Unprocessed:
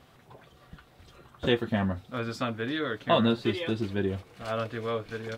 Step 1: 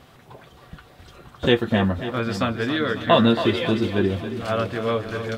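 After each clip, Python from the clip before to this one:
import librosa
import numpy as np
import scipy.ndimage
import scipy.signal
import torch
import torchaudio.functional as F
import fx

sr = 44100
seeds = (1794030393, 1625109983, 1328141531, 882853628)

y = fx.echo_split(x, sr, split_hz=330.0, low_ms=539, high_ms=275, feedback_pct=52, wet_db=-10)
y = y * 10.0 ** (7.0 / 20.0)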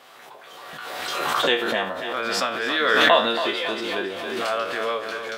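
y = fx.spec_trails(x, sr, decay_s=0.33)
y = scipy.signal.sosfilt(scipy.signal.butter(2, 590.0, 'highpass', fs=sr, output='sos'), y)
y = fx.pre_swell(y, sr, db_per_s=25.0)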